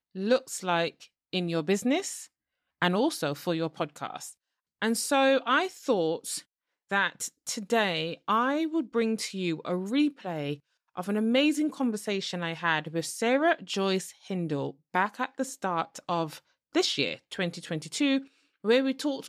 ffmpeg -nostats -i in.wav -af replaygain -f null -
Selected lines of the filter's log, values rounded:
track_gain = +7.6 dB
track_peak = 0.176